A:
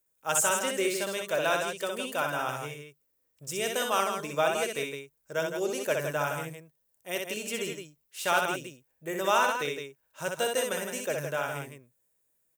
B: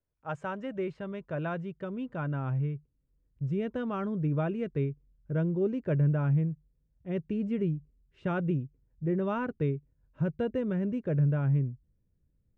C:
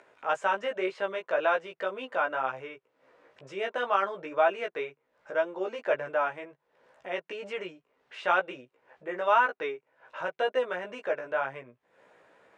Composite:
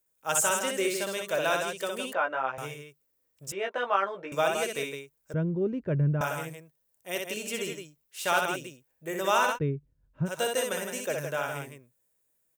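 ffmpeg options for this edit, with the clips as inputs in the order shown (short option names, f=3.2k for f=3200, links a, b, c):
-filter_complex "[2:a]asplit=2[a][b];[1:a]asplit=2[c][d];[0:a]asplit=5[e][f][g][h][i];[e]atrim=end=2.132[j];[a]atrim=start=2.128:end=2.582[k];[f]atrim=start=2.578:end=3.522[l];[b]atrim=start=3.518:end=4.322[m];[g]atrim=start=4.318:end=5.342[n];[c]atrim=start=5.338:end=6.212[o];[h]atrim=start=6.208:end=9.59[p];[d]atrim=start=9.53:end=10.31[q];[i]atrim=start=10.25[r];[j][k]acrossfade=d=0.004:c1=hsin:c2=hsin[s];[s][l]acrossfade=d=0.004:c1=hsin:c2=hsin[t];[t][m]acrossfade=d=0.004:c1=hsin:c2=hsin[u];[u][n]acrossfade=d=0.004:c1=hsin:c2=hsin[v];[v][o]acrossfade=d=0.004:c1=hsin:c2=hsin[w];[w][p]acrossfade=d=0.004:c1=hsin:c2=hsin[x];[x][q]acrossfade=d=0.06:c1=tri:c2=tri[y];[y][r]acrossfade=d=0.06:c1=tri:c2=tri"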